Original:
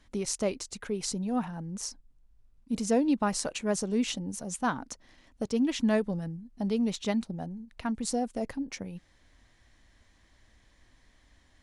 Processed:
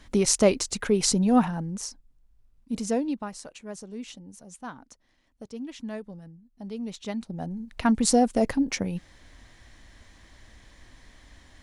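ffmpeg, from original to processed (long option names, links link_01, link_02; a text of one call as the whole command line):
ffmpeg -i in.wav -af "volume=30dB,afade=type=out:start_time=1.38:duration=0.49:silence=0.334965,afade=type=out:start_time=2.86:duration=0.46:silence=0.298538,afade=type=in:start_time=6.52:duration=0.69:silence=0.446684,afade=type=in:start_time=7.21:duration=0.68:silence=0.223872" out.wav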